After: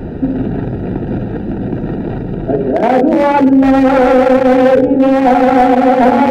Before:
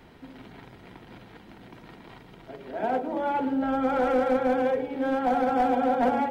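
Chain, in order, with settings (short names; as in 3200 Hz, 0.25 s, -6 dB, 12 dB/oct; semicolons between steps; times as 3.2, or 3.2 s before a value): Wiener smoothing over 41 samples; reverse; compressor 6:1, threshold -35 dBFS, peak gain reduction 13.5 dB; reverse; maximiser +32.5 dB; gain -1 dB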